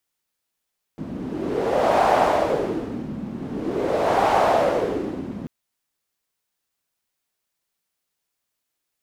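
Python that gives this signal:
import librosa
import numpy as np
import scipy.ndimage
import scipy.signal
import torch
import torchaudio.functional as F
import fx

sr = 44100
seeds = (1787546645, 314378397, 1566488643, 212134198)

y = fx.wind(sr, seeds[0], length_s=4.49, low_hz=220.0, high_hz=740.0, q=2.9, gusts=2, swing_db=13.5)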